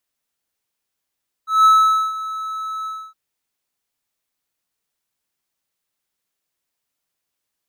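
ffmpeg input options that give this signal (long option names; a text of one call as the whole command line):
ffmpeg -f lavfi -i "aevalsrc='0.531*(1-4*abs(mod(1300*t+0.25,1)-0.5))':duration=1.665:sample_rate=44100,afade=type=in:duration=0.179,afade=type=out:start_time=0.179:duration=0.475:silence=0.15,afade=type=out:start_time=1.39:duration=0.275" out.wav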